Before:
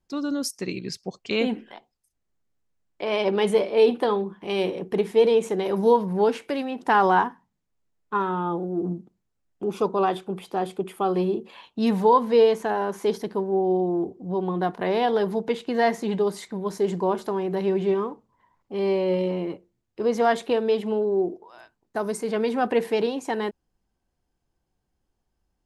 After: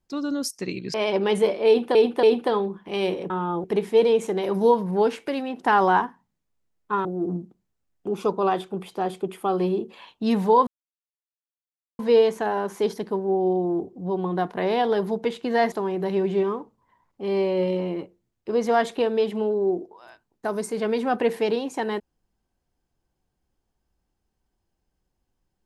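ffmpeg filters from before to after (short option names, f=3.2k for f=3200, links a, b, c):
-filter_complex "[0:a]asplit=9[a][b][c][d][e][f][g][h][i];[a]atrim=end=0.942[j];[b]atrim=start=3.058:end=4.072[k];[c]atrim=start=3.788:end=4.072[l];[d]atrim=start=3.788:end=4.862[m];[e]atrim=start=8.268:end=8.612[n];[f]atrim=start=4.858:end=8.272[o];[g]atrim=start=8.608:end=12.23,asetpts=PTS-STARTPTS,afade=t=out:st=3.618:d=0.004:c=hsin,apad=pad_dur=1.32[p];[h]atrim=start=12.23:end=15.962,asetpts=PTS-STARTPTS,afade=t=in:d=0.004:c=hsin[q];[i]atrim=start=17.228[r];[j][k]acrossfade=d=0.004:c1=hsin:c2=hsin[s];[s][l]acrossfade=d=0.004:c1=hsin:c2=hsin[t];[t][m]acrossfade=d=0.004:c1=hsin:c2=hsin[u];[u][n]acrossfade=d=0.004:c1=hsin:c2=hsin[v];[v][o]acrossfade=d=0.004:c1=hsin:c2=hsin[w];[p][q]concat=n=2:v=0:a=1[x];[w][x]acrossfade=d=0.004:c1=hsin:c2=hsin[y];[y][r]acrossfade=d=0.004:c1=hsin:c2=hsin"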